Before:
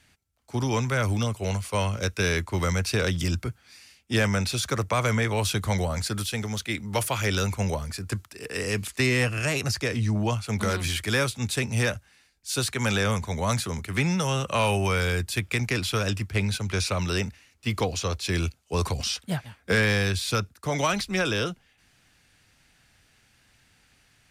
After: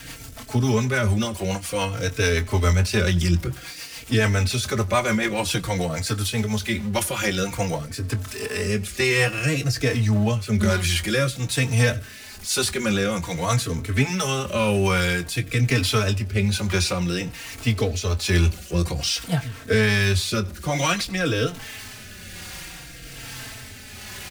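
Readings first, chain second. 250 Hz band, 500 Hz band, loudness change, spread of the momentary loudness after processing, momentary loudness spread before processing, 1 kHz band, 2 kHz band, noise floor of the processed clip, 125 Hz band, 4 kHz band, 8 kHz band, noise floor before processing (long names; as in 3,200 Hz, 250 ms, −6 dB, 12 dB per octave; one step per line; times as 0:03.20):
+4.5 dB, +4.0 dB, +4.0 dB, 15 LU, 7 LU, +1.5 dB, +3.0 dB, −40 dBFS, +4.5 dB, +3.5 dB, +4.0 dB, −63 dBFS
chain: converter with a step at zero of −35 dBFS
rotating-speaker cabinet horn 7 Hz, later 1.2 Hz, at 0:06.69
double-tracking delay 23 ms −12 dB
on a send: single-tap delay 91 ms −23.5 dB
on the sum: barber-pole flanger 3.9 ms −0.52 Hz
level +7.5 dB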